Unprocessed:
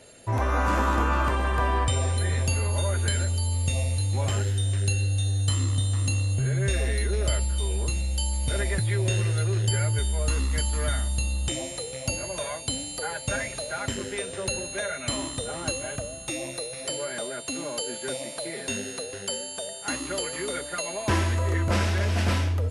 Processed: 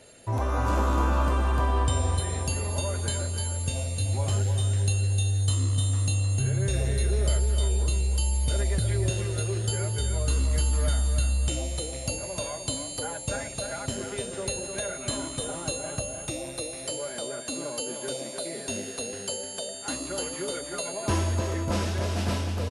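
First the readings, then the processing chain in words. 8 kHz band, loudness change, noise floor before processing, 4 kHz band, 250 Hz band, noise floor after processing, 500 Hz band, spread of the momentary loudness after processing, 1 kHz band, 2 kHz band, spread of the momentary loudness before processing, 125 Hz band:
0.0 dB, -1.0 dB, -38 dBFS, -2.5 dB, -0.5 dB, -38 dBFS, -1.0 dB, 7 LU, -2.5 dB, -6.0 dB, 7 LU, -1.0 dB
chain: dynamic bell 1.9 kHz, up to -8 dB, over -46 dBFS, Q 1.3; on a send: feedback delay 305 ms, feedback 41%, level -6.5 dB; on the sum: trim -1.5 dB

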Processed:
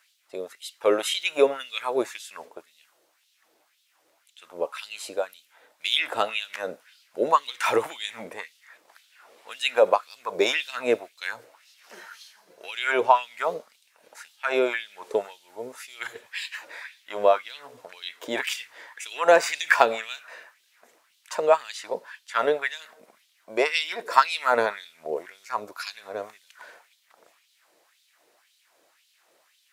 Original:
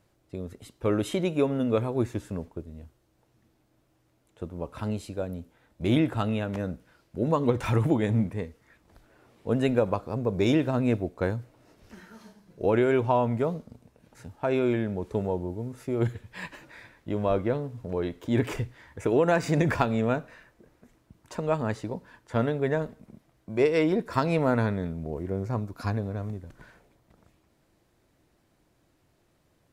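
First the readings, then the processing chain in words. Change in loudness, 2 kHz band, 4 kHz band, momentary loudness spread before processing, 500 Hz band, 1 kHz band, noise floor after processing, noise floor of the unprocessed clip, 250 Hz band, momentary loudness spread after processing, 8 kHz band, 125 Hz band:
+2.0 dB, +9.0 dB, +12.5 dB, 16 LU, +2.0 dB, +7.5 dB, -67 dBFS, -68 dBFS, -11.5 dB, 19 LU, no reading, under -25 dB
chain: tilt shelf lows -4.5 dB, about 1.2 kHz; LFO high-pass sine 1.9 Hz 460–3600 Hz; trim +5 dB

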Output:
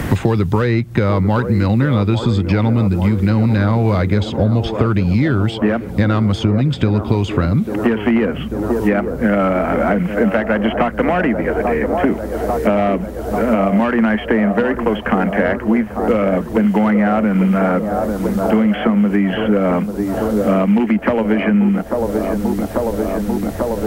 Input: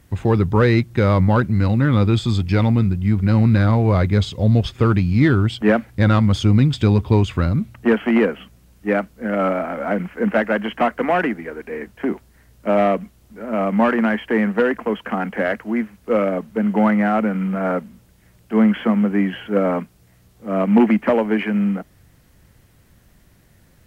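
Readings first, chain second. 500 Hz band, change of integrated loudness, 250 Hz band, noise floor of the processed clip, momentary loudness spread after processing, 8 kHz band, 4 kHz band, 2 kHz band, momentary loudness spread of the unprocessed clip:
+3.5 dB, +2.0 dB, +3.5 dB, -26 dBFS, 5 LU, no reading, +2.0 dB, +2.5 dB, 9 LU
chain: compression, threshold -17 dBFS, peak gain reduction 8 dB; feedback echo behind a band-pass 843 ms, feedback 63%, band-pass 530 Hz, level -8 dB; three bands compressed up and down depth 100%; trim +5 dB

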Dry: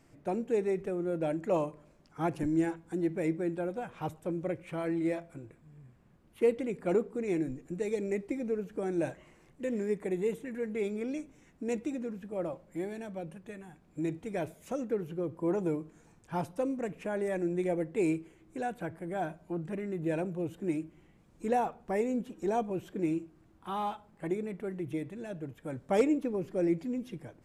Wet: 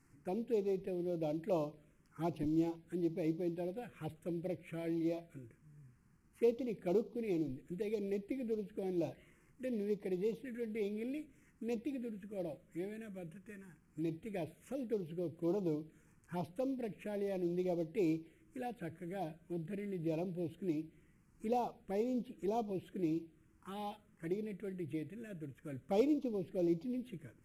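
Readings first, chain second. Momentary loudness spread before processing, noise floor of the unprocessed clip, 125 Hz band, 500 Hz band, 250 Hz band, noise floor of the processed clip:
10 LU, -62 dBFS, -5.0 dB, -6.0 dB, -5.0 dB, -68 dBFS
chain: CVSD coder 64 kbps; touch-sensitive phaser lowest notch 600 Hz, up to 1.7 kHz, full sweep at -27.5 dBFS; trim -4.5 dB

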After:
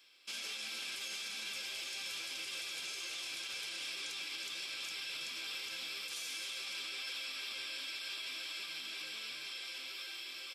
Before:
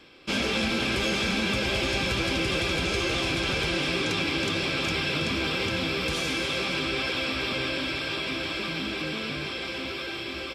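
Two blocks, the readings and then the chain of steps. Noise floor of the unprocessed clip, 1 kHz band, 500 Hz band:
-35 dBFS, -21.0 dB, -28.5 dB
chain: differentiator; peak limiter -31 dBFS, peak gain reduction 8 dB; trim -2 dB

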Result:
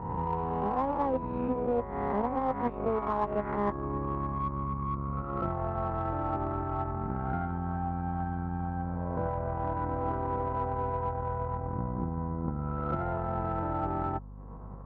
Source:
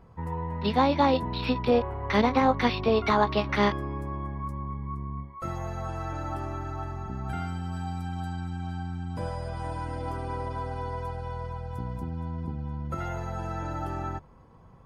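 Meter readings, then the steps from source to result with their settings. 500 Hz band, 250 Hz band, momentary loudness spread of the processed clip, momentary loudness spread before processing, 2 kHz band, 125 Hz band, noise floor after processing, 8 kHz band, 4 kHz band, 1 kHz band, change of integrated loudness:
-3.0 dB, -3.5 dB, 4 LU, 12 LU, -10.5 dB, -1.5 dB, -40 dBFS, under -25 dB, under -20 dB, -1.5 dB, -2.5 dB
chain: reverse spectral sustain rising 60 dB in 1.23 s; low-pass 1.3 kHz 24 dB/octave; bass shelf 120 Hz -10.5 dB; transient shaper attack +9 dB, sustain -10 dB; reverse; compression 5:1, threshold -32 dBFS, peak gain reduction 16.5 dB; reverse; hum 50 Hz, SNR 14 dB; in parallel at -9 dB: saturation -35.5 dBFS, distortion -10 dB; on the sum: trim +3 dB

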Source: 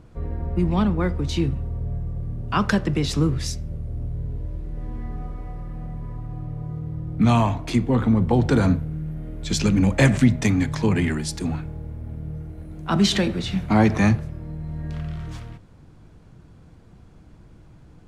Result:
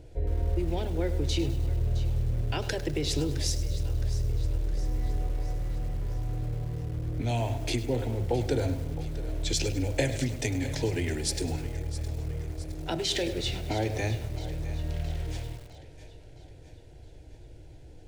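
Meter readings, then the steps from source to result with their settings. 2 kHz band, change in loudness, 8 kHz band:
-9.0 dB, -8.0 dB, -1.5 dB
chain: compression 3:1, threshold -25 dBFS, peak gain reduction 11 dB; static phaser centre 480 Hz, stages 4; two-band feedback delay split 390 Hz, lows 195 ms, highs 664 ms, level -14.5 dB; bit-crushed delay 102 ms, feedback 55%, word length 7-bit, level -13 dB; trim +2.5 dB

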